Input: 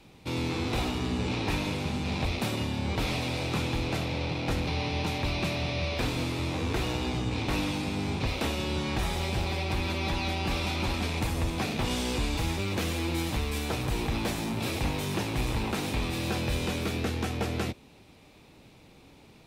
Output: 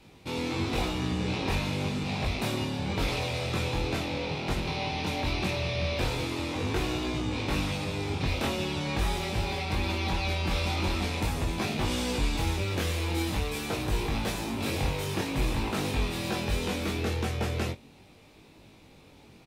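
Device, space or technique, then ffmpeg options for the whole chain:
double-tracked vocal: -filter_complex "[0:a]asplit=2[s0][s1];[s1]adelay=22,volume=0.251[s2];[s0][s2]amix=inputs=2:normalize=0,flanger=delay=19:depth=3.6:speed=0.43,volume=1.41"

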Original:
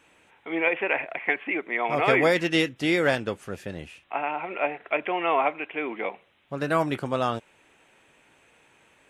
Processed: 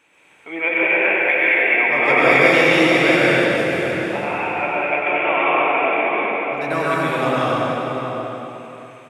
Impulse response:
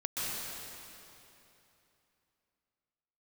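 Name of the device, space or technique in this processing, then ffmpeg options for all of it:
PA in a hall: -filter_complex "[0:a]asettb=1/sr,asplit=3[s0][s1][s2];[s0]atrim=end=1.034[s3];[s1]atrim=start=1.03:end=1.63,asetpts=PTS-STARTPTS,afade=t=in:d=0.004:c=qsin,afade=t=out:st=0.596:d=0.004:c=qsin,aemphasis=mode=production:type=riaa[s4];[s2]atrim=start=1.626[s5];[s3][s4]acrossfade=d=0.004:c1=hsin:c2=qsin[s6];[s6][s5]acrossfade=d=0.004:c1=qsin:c2=hsin,highpass=f=180:p=1,equalizer=f=2300:t=o:w=0.22:g=6,asplit=2[s7][s8];[s8]adelay=641.4,volume=0.447,highshelf=f=4000:g=-14.4[s9];[s7][s9]amix=inputs=2:normalize=0,aecho=1:1:96:0.473[s10];[1:a]atrim=start_sample=2205[s11];[s10][s11]afir=irnorm=-1:irlink=0,volume=1.19"

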